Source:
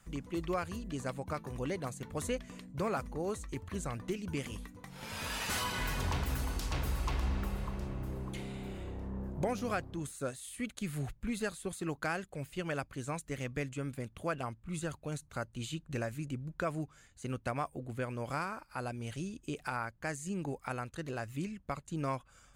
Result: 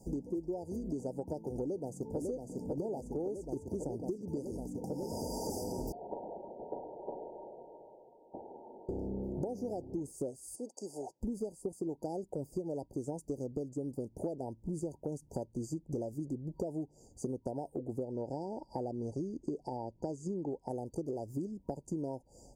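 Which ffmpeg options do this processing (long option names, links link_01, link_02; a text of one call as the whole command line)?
ffmpeg -i in.wav -filter_complex "[0:a]asplit=2[link_01][link_02];[link_02]afade=type=in:start_time=1.6:duration=0.01,afade=type=out:start_time=2.18:duration=0.01,aecho=0:1:550|1100|1650|2200|2750|3300|3850|4400|4950|5500|6050|6600:0.630957|0.504766|0.403813|0.32305|0.25844|0.206752|0.165402|0.132321|0.105857|0.0846857|0.0677485|0.0541988[link_03];[link_01][link_03]amix=inputs=2:normalize=0,asettb=1/sr,asplit=3[link_04][link_05][link_06];[link_04]atrim=end=5.924[link_07];[link_05]atrim=start=5.92:end=8.89,asetpts=PTS-STARTPTS,afade=type=in:duration=0.004:curve=qsin,afade=type=out:start_time=2.966:duration=0.004:curve=qsin,lowpass=frequency=2700:width_type=q:width=0.5098,lowpass=frequency=2700:width_type=q:width=0.6013,lowpass=frequency=2700:width_type=q:width=0.9,lowpass=frequency=2700:width_type=q:width=2.563,afreqshift=-3200[link_08];[link_06]atrim=start=8.886[link_09];[link_07][link_08]acrossfade=duration=0.004:curve1=hsin:curve2=qsin[link_10];[link_10][link_09]acrossfade=duration=0.004:curve1=qsin:curve2=hsin,asplit=3[link_11][link_12][link_13];[link_11]afade=type=out:start_time=10.55:duration=0.02[link_14];[link_12]highpass=760,lowpass=6700,afade=type=in:start_time=10.55:duration=0.02,afade=type=out:start_time=11.2:duration=0.02[link_15];[link_13]afade=type=in:start_time=11.2:duration=0.02[link_16];[link_14][link_15][link_16]amix=inputs=3:normalize=0,asettb=1/sr,asplit=3[link_17][link_18][link_19];[link_17]atrim=end=18.034[link_20];[link_18]atrim=start=18.03:end=20.68,asetpts=PTS-STARTPTS,afade=type=in:duration=0.004:curve=qsin,afade=type=out:start_time=2.646:duration=0.004:curve=qsin,lowpass=5700[link_21];[link_19]atrim=start=20.676[link_22];[link_20][link_21]acrossfade=duration=0.004:curve1=hsin:curve2=qsin[link_23];[link_23][link_22]acrossfade=duration=0.004:curve1=qsin:curve2=hsin,afftfilt=real='re*(1-between(b*sr/4096,950,4600))':imag='im*(1-between(b*sr/4096,950,4600))':win_size=4096:overlap=0.75,equalizer=frequency=370:width=0.77:gain=15,acompressor=threshold=-38dB:ratio=10,volume=3.5dB" out.wav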